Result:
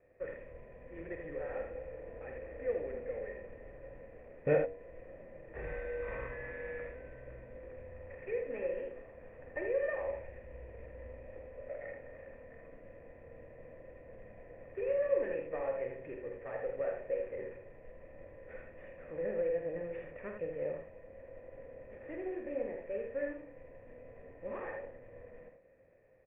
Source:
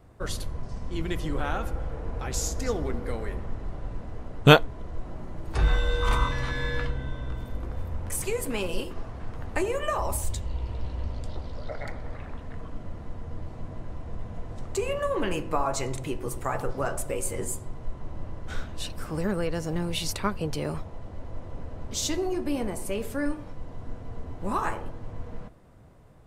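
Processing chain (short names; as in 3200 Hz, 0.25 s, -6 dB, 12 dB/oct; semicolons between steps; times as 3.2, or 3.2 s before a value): CVSD 16 kbps; low shelf 210 Hz -7 dB; de-hum 95.15 Hz, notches 10; in parallel at -6 dB: wrapped overs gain 9.5 dB; on the sum: vocal tract filter e; air absorption 220 m; on a send: early reflections 48 ms -7.5 dB, 80 ms -6 dB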